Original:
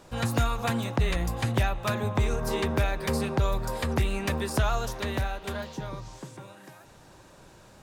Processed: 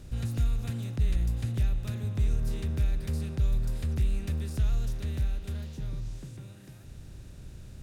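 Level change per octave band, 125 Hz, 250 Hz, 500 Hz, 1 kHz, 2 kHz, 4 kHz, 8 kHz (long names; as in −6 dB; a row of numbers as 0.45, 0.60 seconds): 0.0, −7.0, −15.0, −21.5, −16.0, −12.0, −10.0 decibels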